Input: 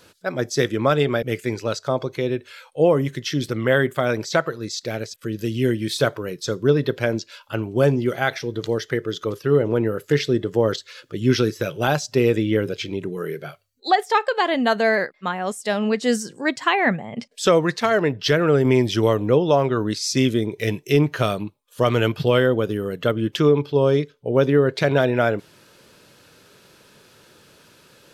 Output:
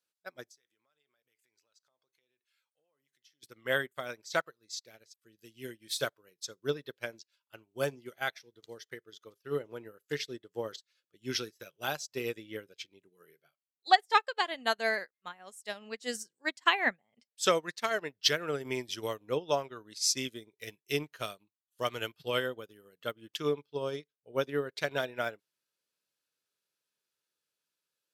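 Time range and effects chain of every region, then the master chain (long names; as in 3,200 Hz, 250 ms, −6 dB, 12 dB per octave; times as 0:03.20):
0:00.51–0:03.43: low-shelf EQ 500 Hz −11.5 dB + downward compressor, threshold −35 dBFS
whole clip: spectral tilt +3 dB per octave; expander for the loud parts 2.5 to 1, over −37 dBFS; level −3 dB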